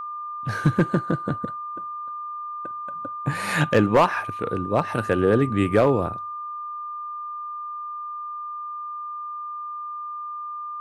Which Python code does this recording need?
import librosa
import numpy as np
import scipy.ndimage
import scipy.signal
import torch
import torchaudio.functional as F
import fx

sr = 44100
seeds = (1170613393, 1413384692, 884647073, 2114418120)

y = fx.fix_declip(x, sr, threshold_db=-9.5)
y = fx.notch(y, sr, hz=1200.0, q=30.0)